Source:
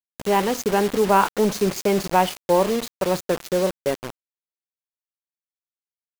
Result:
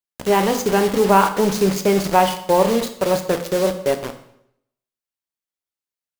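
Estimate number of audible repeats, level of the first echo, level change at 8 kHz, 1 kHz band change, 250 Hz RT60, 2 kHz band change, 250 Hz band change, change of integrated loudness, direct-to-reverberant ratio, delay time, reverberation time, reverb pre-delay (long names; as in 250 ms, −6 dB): no echo audible, no echo audible, +3.0 dB, +3.0 dB, 0.75 s, +3.0 dB, +3.5 dB, +3.0 dB, 7.0 dB, no echo audible, 0.75 s, 10 ms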